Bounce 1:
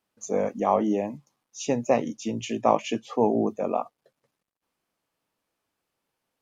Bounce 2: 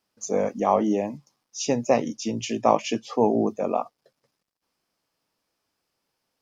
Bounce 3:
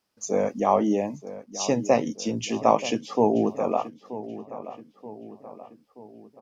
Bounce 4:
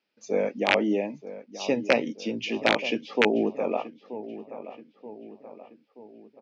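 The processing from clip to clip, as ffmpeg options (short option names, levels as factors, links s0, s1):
-af "equalizer=f=5100:t=o:w=0.43:g=9,volume=1.19"
-filter_complex "[0:a]asplit=2[s0][s1];[s1]adelay=929,lowpass=f=2300:p=1,volume=0.2,asplit=2[s2][s3];[s3]adelay=929,lowpass=f=2300:p=1,volume=0.53,asplit=2[s4][s5];[s5]adelay=929,lowpass=f=2300:p=1,volume=0.53,asplit=2[s6][s7];[s7]adelay=929,lowpass=f=2300:p=1,volume=0.53,asplit=2[s8][s9];[s9]adelay=929,lowpass=f=2300:p=1,volume=0.53[s10];[s0][s2][s4][s6][s8][s10]amix=inputs=6:normalize=0"
-af "aeval=exprs='(mod(2.51*val(0)+1,2)-1)/2.51':c=same,highpass=230,equalizer=f=730:t=q:w=4:g=-5,equalizer=f=1100:t=q:w=4:g=-10,equalizer=f=2400:t=q:w=4:g=6,lowpass=f=4400:w=0.5412,lowpass=f=4400:w=1.3066"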